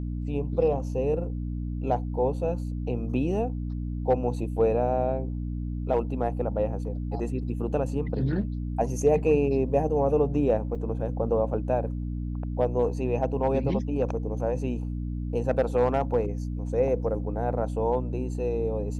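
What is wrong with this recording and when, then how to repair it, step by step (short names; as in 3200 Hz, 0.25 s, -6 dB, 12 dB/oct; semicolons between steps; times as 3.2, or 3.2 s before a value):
hum 60 Hz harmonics 5 -31 dBFS
10.75–10.76 gap 5.1 ms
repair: de-hum 60 Hz, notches 5; interpolate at 10.75, 5.1 ms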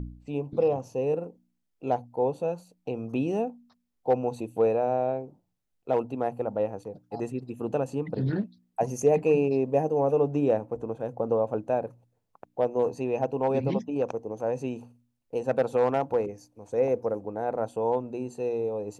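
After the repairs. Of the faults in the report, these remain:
none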